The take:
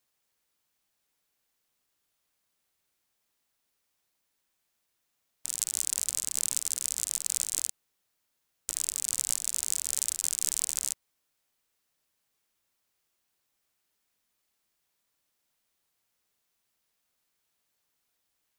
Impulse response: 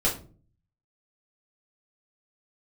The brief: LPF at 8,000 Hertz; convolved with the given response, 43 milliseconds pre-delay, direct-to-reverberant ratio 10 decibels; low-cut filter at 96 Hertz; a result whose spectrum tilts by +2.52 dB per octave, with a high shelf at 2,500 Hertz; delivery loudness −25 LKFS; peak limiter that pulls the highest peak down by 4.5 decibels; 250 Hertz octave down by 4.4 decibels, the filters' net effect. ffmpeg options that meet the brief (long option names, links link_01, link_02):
-filter_complex "[0:a]highpass=96,lowpass=8000,equalizer=frequency=250:width_type=o:gain=-6,highshelf=frequency=2500:gain=5.5,alimiter=limit=-7dB:level=0:latency=1,asplit=2[link_01][link_02];[1:a]atrim=start_sample=2205,adelay=43[link_03];[link_02][link_03]afir=irnorm=-1:irlink=0,volume=-20.5dB[link_04];[link_01][link_04]amix=inputs=2:normalize=0,volume=4dB"